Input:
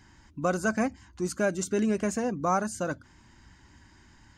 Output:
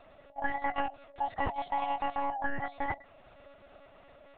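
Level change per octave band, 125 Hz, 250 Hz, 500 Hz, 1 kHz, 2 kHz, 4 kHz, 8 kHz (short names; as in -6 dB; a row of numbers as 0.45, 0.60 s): -12.0 dB, -15.0 dB, -11.0 dB, +1.5 dB, -3.0 dB, -3.0 dB, under -40 dB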